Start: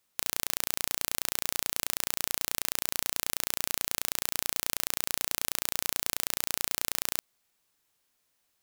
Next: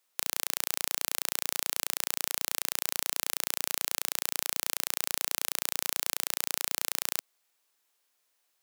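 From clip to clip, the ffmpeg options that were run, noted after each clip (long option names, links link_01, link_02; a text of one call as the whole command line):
ffmpeg -i in.wav -af "highpass=380" out.wav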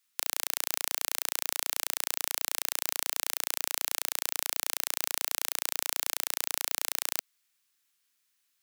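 ffmpeg -i in.wav -filter_complex "[0:a]acrossover=split=350|1100|5700[link_01][link_02][link_03][link_04];[link_01]alimiter=level_in=30dB:limit=-24dB:level=0:latency=1:release=215,volume=-30dB[link_05];[link_02]acrusher=bits=7:mix=0:aa=0.000001[link_06];[link_05][link_06][link_03][link_04]amix=inputs=4:normalize=0" out.wav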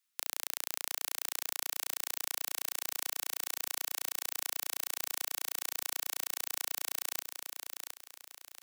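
ffmpeg -i in.wav -af "aecho=1:1:714|1428|2142|2856:0.501|0.15|0.0451|0.0135,areverse,acompressor=mode=upward:threshold=-36dB:ratio=2.5,areverse,volume=-6dB" out.wav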